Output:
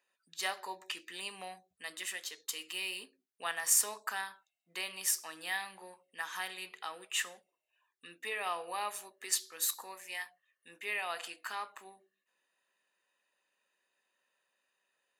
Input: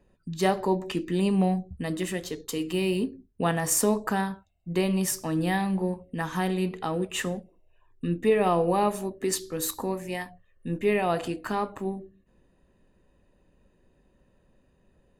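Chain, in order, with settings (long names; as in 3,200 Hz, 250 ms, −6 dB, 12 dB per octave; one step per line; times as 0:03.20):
high-pass filter 1,500 Hz 12 dB per octave
level −1.5 dB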